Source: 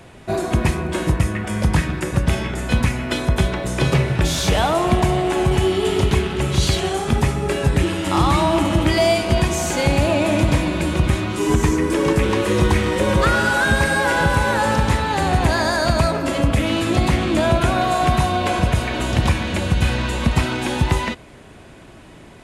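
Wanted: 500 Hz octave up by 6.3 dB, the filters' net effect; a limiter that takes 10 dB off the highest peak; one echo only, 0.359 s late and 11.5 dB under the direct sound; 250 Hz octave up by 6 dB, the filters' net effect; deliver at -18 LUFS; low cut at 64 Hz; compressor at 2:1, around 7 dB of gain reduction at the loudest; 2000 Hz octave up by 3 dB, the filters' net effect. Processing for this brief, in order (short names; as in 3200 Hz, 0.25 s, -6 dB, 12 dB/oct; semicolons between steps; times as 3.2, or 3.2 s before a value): HPF 64 Hz; bell 250 Hz +6 dB; bell 500 Hz +6.5 dB; bell 2000 Hz +3.5 dB; compressor 2:1, threshold -22 dBFS; limiter -17 dBFS; echo 0.359 s -11.5 dB; gain +7 dB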